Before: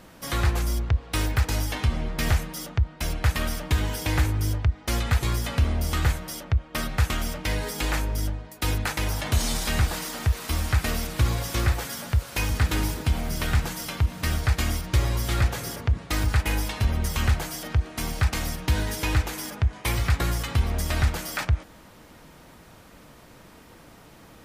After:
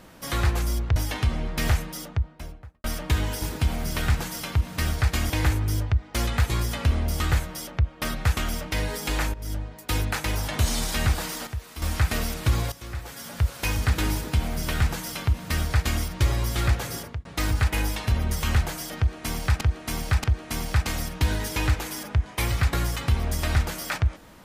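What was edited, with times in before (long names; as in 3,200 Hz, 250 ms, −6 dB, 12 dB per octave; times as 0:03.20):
0:00.96–0:01.57: remove
0:02.49–0:03.45: fade out and dull
0:08.07–0:08.36: fade in, from −15 dB
0:10.20–0:10.55: clip gain −9.5 dB
0:11.45–0:12.16: fade in quadratic, from −14.5 dB
0:12.87–0:14.75: duplicate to 0:04.03
0:15.71–0:15.98: fade out
0:17.71–0:18.34: repeat, 3 plays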